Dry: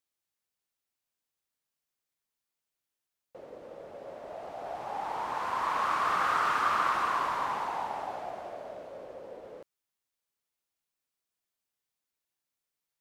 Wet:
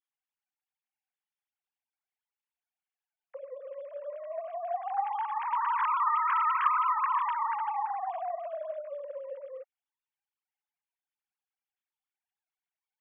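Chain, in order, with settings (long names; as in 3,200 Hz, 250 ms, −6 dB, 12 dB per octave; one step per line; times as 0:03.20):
three sine waves on the formant tracks
high-pass filter 380 Hz 24 dB per octave
level +1.5 dB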